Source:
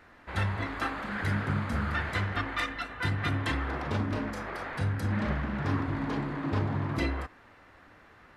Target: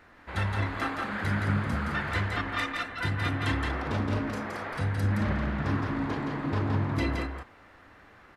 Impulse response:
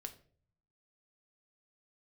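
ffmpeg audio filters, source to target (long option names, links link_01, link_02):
-af "aecho=1:1:169:0.631"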